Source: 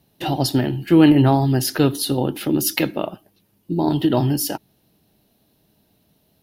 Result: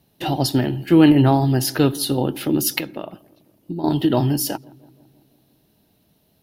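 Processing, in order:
0:02.78–0:03.84: downward compressor 10 to 1, threshold −25 dBFS, peak gain reduction 11.5 dB
on a send: feedback echo with a low-pass in the loop 167 ms, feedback 64%, low-pass 1,400 Hz, level −24 dB

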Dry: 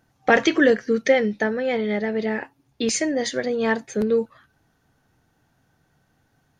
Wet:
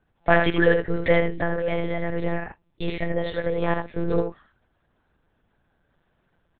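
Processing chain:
dynamic equaliser 890 Hz, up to +5 dB, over −33 dBFS, Q 0.93
single-tap delay 78 ms −5.5 dB
one-pitch LPC vocoder at 8 kHz 170 Hz
level −4 dB

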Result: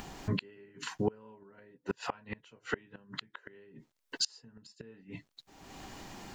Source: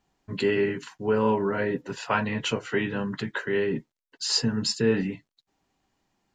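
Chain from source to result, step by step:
upward compression, threshold −27 dBFS
gate with flip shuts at −19 dBFS, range −32 dB
level +1 dB

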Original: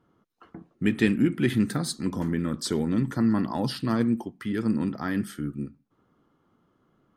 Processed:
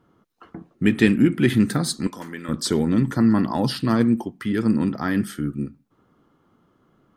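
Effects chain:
0:02.07–0:02.49: high-pass filter 1,300 Hz 6 dB per octave
level +5.5 dB

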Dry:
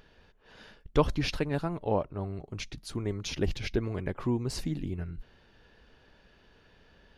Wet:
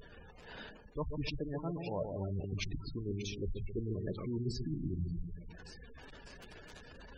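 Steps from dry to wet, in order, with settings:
surface crackle 380 per second −42 dBFS
reversed playback
downward compressor 10 to 1, threshold −40 dBFS, peak gain reduction 22 dB
reversed playback
echo with a time of its own for lows and highs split 950 Hz, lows 134 ms, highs 582 ms, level −5.5 dB
gate on every frequency bin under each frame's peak −15 dB strong
level +5.5 dB

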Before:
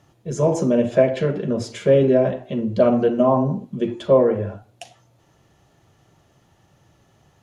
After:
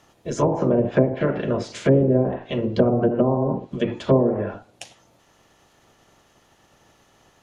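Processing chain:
ceiling on every frequency bin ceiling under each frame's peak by 15 dB
treble cut that deepens with the level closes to 520 Hz, closed at −13 dBFS

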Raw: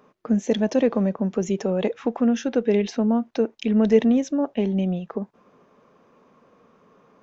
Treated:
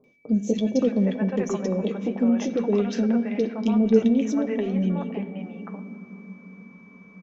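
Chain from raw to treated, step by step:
flanger 1.3 Hz, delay 7.4 ms, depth 3.6 ms, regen −49%
steady tone 2,300 Hz −56 dBFS
three-band delay without the direct sound lows, highs, mids 40/570 ms, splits 640/2,600 Hz
on a send at −13.5 dB: convolution reverb RT60 3.6 s, pre-delay 46 ms
on the sum: level +2.5 dB

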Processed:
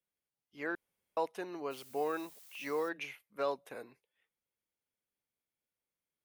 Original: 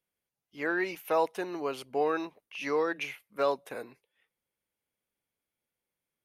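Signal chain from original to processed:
0:00.75–0:01.17: fill with room tone
0:01.70–0:02.88: background noise blue −51 dBFS
level −6.5 dB

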